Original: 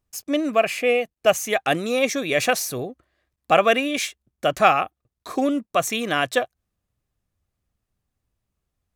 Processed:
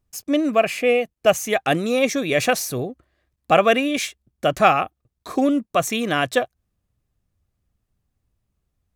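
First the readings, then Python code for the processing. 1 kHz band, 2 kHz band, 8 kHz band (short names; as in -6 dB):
+1.0 dB, 0.0 dB, 0.0 dB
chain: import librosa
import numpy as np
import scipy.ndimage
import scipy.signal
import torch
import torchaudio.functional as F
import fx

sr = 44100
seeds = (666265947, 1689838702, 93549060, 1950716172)

y = fx.low_shelf(x, sr, hz=340.0, db=6.0)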